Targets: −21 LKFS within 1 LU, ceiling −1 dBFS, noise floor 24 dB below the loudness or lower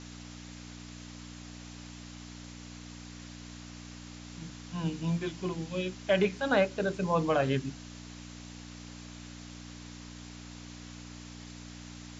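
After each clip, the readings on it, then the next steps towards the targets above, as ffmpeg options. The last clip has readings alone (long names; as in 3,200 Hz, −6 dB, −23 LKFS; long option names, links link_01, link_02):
mains hum 60 Hz; hum harmonics up to 300 Hz; level of the hum −44 dBFS; background noise floor −47 dBFS; target noise floor −55 dBFS; integrated loudness −31.0 LKFS; sample peak −14.0 dBFS; target loudness −21.0 LKFS
→ -af "bandreject=frequency=60:width_type=h:width=4,bandreject=frequency=120:width_type=h:width=4,bandreject=frequency=180:width_type=h:width=4,bandreject=frequency=240:width_type=h:width=4,bandreject=frequency=300:width_type=h:width=4"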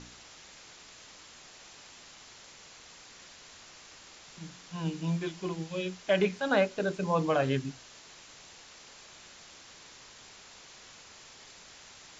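mains hum none found; background noise floor −53 dBFS; target noise floor −55 dBFS
→ -af "afftdn=noise_reduction=6:noise_floor=-53"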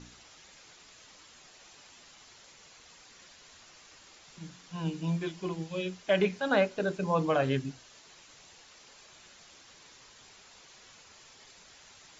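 background noise floor −56 dBFS; integrated loudness −30.5 LKFS; sample peak −14.0 dBFS; target loudness −21.0 LKFS
→ -af "volume=9.5dB"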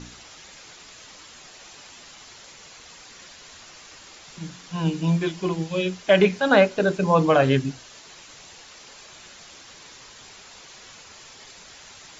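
integrated loudness −21.0 LKFS; sample peak −4.5 dBFS; background noise floor −47 dBFS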